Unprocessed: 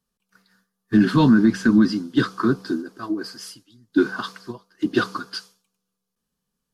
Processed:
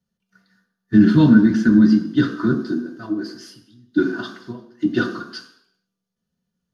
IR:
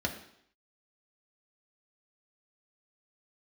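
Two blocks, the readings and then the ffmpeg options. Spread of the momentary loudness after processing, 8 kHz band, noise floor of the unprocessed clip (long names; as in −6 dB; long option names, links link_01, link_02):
20 LU, can't be measured, −81 dBFS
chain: -filter_complex "[1:a]atrim=start_sample=2205[link_01];[0:a][link_01]afir=irnorm=-1:irlink=0,volume=-7.5dB"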